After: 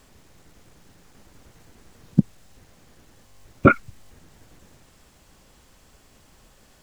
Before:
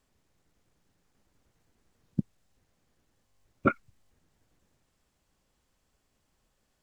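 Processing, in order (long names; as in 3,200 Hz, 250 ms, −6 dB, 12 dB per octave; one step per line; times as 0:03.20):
boost into a limiter +20.5 dB
level −1 dB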